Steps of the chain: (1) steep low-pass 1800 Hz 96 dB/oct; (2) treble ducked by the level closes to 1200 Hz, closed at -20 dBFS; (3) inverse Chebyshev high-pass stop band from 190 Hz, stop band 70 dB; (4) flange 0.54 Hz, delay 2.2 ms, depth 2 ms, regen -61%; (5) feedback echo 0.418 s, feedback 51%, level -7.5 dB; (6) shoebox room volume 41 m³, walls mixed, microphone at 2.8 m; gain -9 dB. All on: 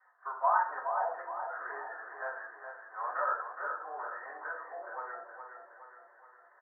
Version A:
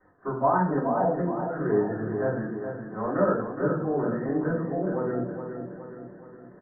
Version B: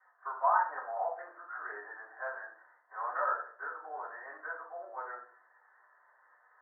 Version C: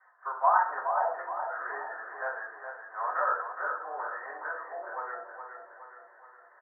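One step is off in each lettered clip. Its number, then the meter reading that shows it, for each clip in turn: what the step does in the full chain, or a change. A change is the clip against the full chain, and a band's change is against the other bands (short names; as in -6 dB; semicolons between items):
3, loudness change +8.5 LU; 5, momentary loudness spread change -3 LU; 4, loudness change +4.0 LU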